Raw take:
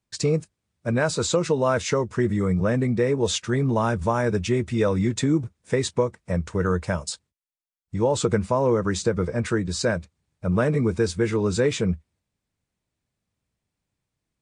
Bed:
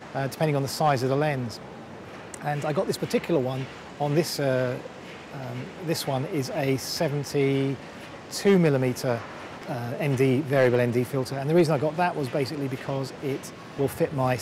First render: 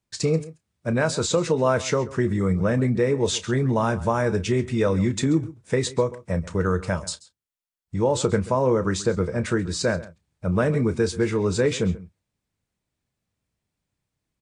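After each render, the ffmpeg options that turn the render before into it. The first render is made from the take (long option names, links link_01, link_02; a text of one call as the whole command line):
ffmpeg -i in.wav -filter_complex "[0:a]asplit=2[link_01][link_02];[link_02]adelay=31,volume=-13.5dB[link_03];[link_01][link_03]amix=inputs=2:normalize=0,asplit=2[link_04][link_05];[link_05]adelay=134.1,volume=-18dB,highshelf=frequency=4000:gain=-3.02[link_06];[link_04][link_06]amix=inputs=2:normalize=0" out.wav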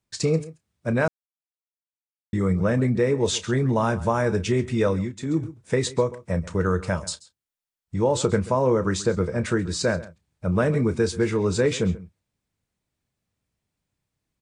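ffmpeg -i in.wav -filter_complex "[0:a]asplit=5[link_01][link_02][link_03][link_04][link_05];[link_01]atrim=end=1.08,asetpts=PTS-STARTPTS,afade=type=out:start_time=1.076:duration=0.004:curve=hsin[link_06];[link_02]atrim=start=1.08:end=2.33,asetpts=PTS-STARTPTS,volume=0[link_07];[link_03]atrim=start=2.33:end=5.15,asetpts=PTS-STARTPTS,afade=type=in:duration=0.004:curve=hsin,afade=type=out:start_time=2.55:duration=0.27:silence=0.177828[link_08];[link_04]atrim=start=5.15:end=5.17,asetpts=PTS-STARTPTS,volume=-15dB[link_09];[link_05]atrim=start=5.17,asetpts=PTS-STARTPTS,afade=type=in:duration=0.27:silence=0.177828[link_10];[link_06][link_07][link_08][link_09][link_10]concat=n=5:v=0:a=1" out.wav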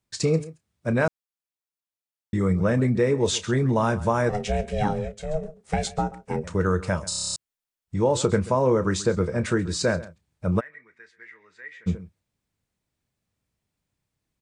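ffmpeg -i in.wav -filter_complex "[0:a]asettb=1/sr,asplit=3[link_01][link_02][link_03];[link_01]atrim=end=4.294[link_04];[link_02]atrim=start=4.29:end=6.44,asetpts=PTS-STARTPTS,afade=type=in:duration=0.004:curve=qsin,afade=type=out:start_time=2.146:duration=0.004:curve=qsin,aeval=exprs='val(0)*sin(2*PI*310*n/s)':channel_layout=same[link_05];[link_03]atrim=start=6.436[link_06];[link_04][link_05]acrossfade=duration=0.004:curve1=hsin:curve2=qsin[link_07];[link_07][link_06]acrossfade=duration=0.004:curve1=qsin:curve2=hsin,asplit=3[link_08][link_09][link_10];[link_08]afade=type=out:start_time=10.59:duration=0.02[link_11];[link_09]bandpass=frequency=1900:width_type=q:width=14,afade=type=in:start_time=10.59:duration=0.02,afade=type=out:start_time=11.86:duration=0.02[link_12];[link_10]afade=type=in:start_time=11.86:duration=0.02[link_13];[link_11][link_12][link_13]amix=inputs=3:normalize=0,asplit=10[link_14][link_15][link_16][link_17][link_18][link_19][link_20][link_21][link_22][link_23];[link_14]atrim=end=7.122[link_24];[link_15]atrim=start=7.088:end=7.122[link_25];[link_16]atrim=start=7.088:end=7.122[link_26];[link_17]atrim=start=7.088:end=7.122[link_27];[link_18]atrim=start=7.088:end=7.122[link_28];[link_19]atrim=start=7.088:end=7.122[link_29];[link_20]atrim=start=7.088:end=7.122[link_30];[link_21]atrim=start=7.088:end=7.122[link_31];[link_22]atrim=start=7.088:end=7.122[link_32];[link_23]atrim=start=7.358[link_33];[link_24][link_25]acrossfade=duration=0.004:curve1=hsin:curve2=hsin[link_34];[link_34][link_26]acrossfade=duration=0.004:curve1=hsin:curve2=hsin[link_35];[link_35][link_27]acrossfade=duration=0.004:curve1=hsin:curve2=hsin[link_36];[link_36][link_28]acrossfade=duration=0.004:curve1=hsin:curve2=hsin[link_37];[link_37][link_29]acrossfade=duration=0.004:curve1=hsin:curve2=hsin[link_38];[link_38][link_30]acrossfade=duration=0.004:curve1=hsin:curve2=hsin[link_39];[link_39][link_31]acrossfade=duration=0.004:curve1=hsin:curve2=hsin[link_40];[link_40][link_32]acrossfade=duration=0.004:curve1=hsin:curve2=hsin[link_41];[link_41][link_33]acrossfade=duration=0.004:curve1=hsin:curve2=hsin" out.wav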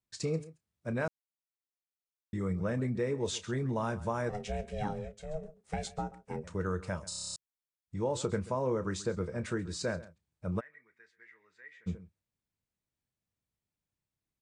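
ffmpeg -i in.wav -af "volume=-11dB" out.wav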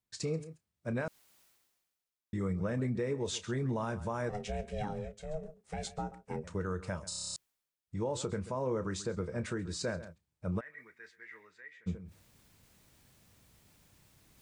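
ffmpeg -i in.wav -af "alimiter=level_in=1dB:limit=-24dB:level=0:latency=1:release=109,volume=-1dB,areverse,acompressor=mode=upward:threshold=-42dB:ratio=2.5,areverse" out.wav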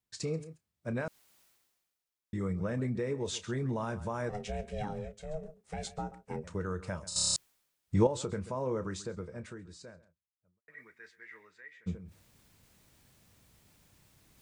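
ffmpeg -i in.wav -filter_complex "[0:a]asplit=4[link_01][link_02][link_03][link_04];[link_01]atrim=end=7.162[link_05];[link_02]atrim=start=7.158:end=8.072,asetpts=PTS-STARTPTS,volume=10.5dB[link_06];[link_03]atrim=start=8.068:end=10.68,asetpts=PTS-STARTPTS,afade=type=out:start_time=0.692:duration=1.92:curve=qua[link_07];[link_04]atrim=start=10.68,asetpts=PTS-STARTPTS,afade=type=in:duration=0.004:curve=hsin[link_08];[link_05][link_06]acrossfade=duration=0.004:curve1=hsin:curve2=hsin[link_09];[link_07][link_08]concat=n=2:v=0:a=1[link_10];[link_09][link_10]acrossfade=duration=0.004:curve1=hsin:curve2=hsin" out.wav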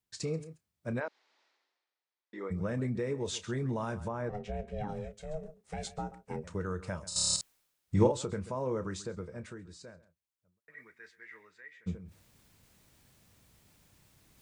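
ffmpeg -i in.wav -filter_complex "[0:a]asplit=3[link_01][link_02][link_03];[link_01]afade=type=out:start_time=0.99:duration=0.02[link_04];[link_02]highpass=frequency=310:width=0.5412,highpass=frequency=310:width=1.3066,equalizer=frequency=890:width_type=q:width=4:gain=4,equalizer=frequency=1900:width_type=q:width=4:gain=3,equalizer=frequency=2900:width_type=q:width=4:gain=-3,lowpass=frequency=4700:width=0.5412,lowpass=frequency=4700:width=1.3066,afade=type=in:start_time=0.99:duration=0.02,afade=type=out:start_time=2.5:duration=0.02[link_05];[link_03]afade=type=in:start_time=2.5:duration=0.02[link_06];[link_04][link_05][link_06]amix=inputs=3:normalize=0,asettb=1/sr,asplit=3[link_07][link_08][link_09];[link_07]atrim=end=4.084[link_10];[link_08]atrim=start=4.08:end=4.89,asetpts=PTS-STARTPTS,afade=type=in:duration=0.004:curve=qsin,afade=type=out:start_time=0.806:duration=0.004:curve=qsin,lowpass=frequency=1500:poles=1[link_11];[link_09]atrim=start=4.886[link_12];[link_10][link_11]acrossfade=duration=0.004:curve1=hsin:curve2=qsin[link_13];[link_13][link_12]acrossfade=duration=0.004:curve1=qsin:curve2=hsin,asettb=1/sr,asplit=3[link_14][link_15][link_16];[link_14]atrim=end=7.254[link_17];[link_15]atrim=start=7.25:end=8.12,asetpts=PTS-STARTPTS,afade=type=in:duration=0.004:curve=qsin,afade=type=out:start_time=0.866:duration=0.004:curve=qsin,asplit=2[link_18][link_19];[link_19]adelay=49,volume=-7dB[link_20];[link_18][link_20]amix=inputs=2:normalize=0,atrim=end_sample=38367[link_21];[link_16]atrim=start=8.116[link_22];[link_17][link_21]acrossfade=duration=0.004:curve1=hsin:curve2=qsin[link_23];[link_23][link_22]acrossfade=duration=0.004:curve1=qsin:curve2=hsin" out.wav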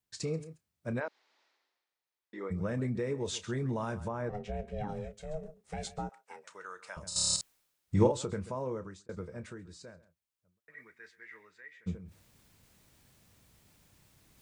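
ffmpeg -i in.wav -filter_complex "[0:a]asettb=1/sr,asplit=3[link_01][link_02][link_03];[link_01]atrim=end=6.094[link_04];[link_02]atrim=start=6.09:end=6.97,asetpts=PTS-STARTPTS,afade=type=in:duration=0.004:curve=qsin,afade=type=out:start_time=0.876:duration=0.004:curve=qsin,highpass=960[link_05];[link_03]atrim=start=6.966[link_06];[link_04][link_05]acrossfade=duration=0.004:curve1=hsin:curve2=qsin[link_07];[link_07][link_06]acrossfade=duration=0.004:curve1=qsin:curve2=hsin,asplit=2[link_08][link_09];[link_08]atrim=end=9.09,asetpts=PTS-STARTPTS,afade=type=out:start_time=8.31:duration=0.78:curve=qsin[link_10];[link_09]atrim=start=9.09,asetpts=PTS-STARTPTS,afade=type=in:duration=0.004:curve=hsin[link_11];[link_10][link_11]concat=n=2:v=0:a=1" out.wav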